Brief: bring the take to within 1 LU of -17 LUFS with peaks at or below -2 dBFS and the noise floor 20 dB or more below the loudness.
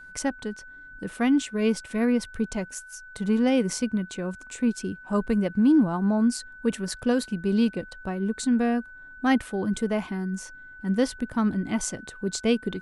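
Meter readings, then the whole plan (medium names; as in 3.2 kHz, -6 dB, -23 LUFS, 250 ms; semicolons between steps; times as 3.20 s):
steady tone 1.5 kHz; tone level -43 dBFS; loudness -26.0 LUFS; peak level -9.5 dBFS; loudness target -17.0 LUFS
-> band-stop 1.5 kHz, Q 30; trim +9 dB; peak limiter -2 dBFS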